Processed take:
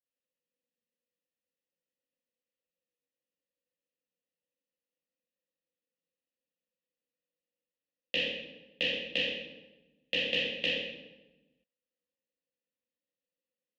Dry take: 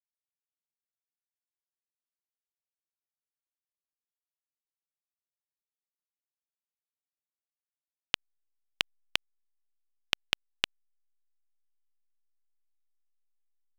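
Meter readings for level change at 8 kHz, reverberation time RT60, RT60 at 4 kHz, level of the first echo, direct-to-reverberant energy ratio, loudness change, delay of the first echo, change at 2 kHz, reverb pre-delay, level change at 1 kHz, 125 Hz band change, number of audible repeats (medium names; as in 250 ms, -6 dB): -11.0 dB, 1.1 s, 0.75 s, no echo, -10.5 dB, +2.5 dB, no echo, +4.0 dB, 3 ms, -10.5 dB, +5.0 dB, no echo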